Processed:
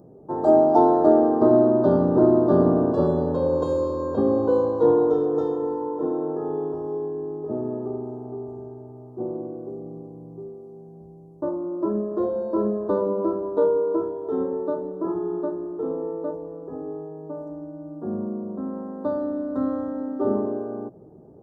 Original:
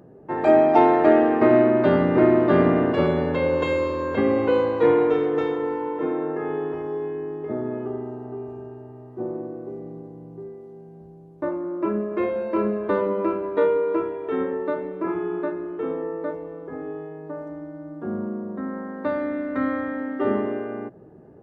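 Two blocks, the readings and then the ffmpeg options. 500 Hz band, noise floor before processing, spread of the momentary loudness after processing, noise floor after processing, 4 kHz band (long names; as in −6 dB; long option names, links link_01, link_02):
0.0 dB, −45 dBFS, 18 LU, −46 dBFS, can't be measured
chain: -af "asuperstop=centerf=2300:order=4:qfactor=0.56"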